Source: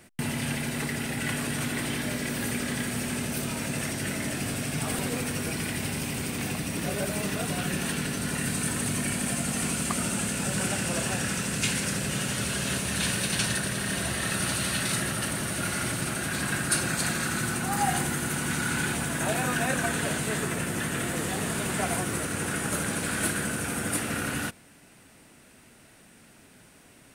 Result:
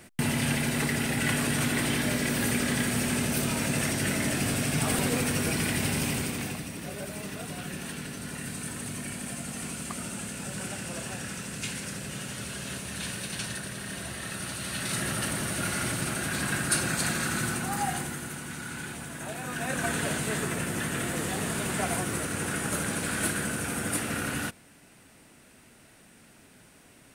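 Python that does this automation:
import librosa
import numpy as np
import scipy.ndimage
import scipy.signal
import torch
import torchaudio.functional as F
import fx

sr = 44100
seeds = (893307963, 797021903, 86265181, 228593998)

y = fx.gain(x, sr, db=fx.line((6.1, 3.0), (6.77, -7.5), (14.57, -7.5), (15.12, -0.5), (17.46, -0.5), (18.48, -9.5), (19.39, -9.5), (19.89, -1.0)))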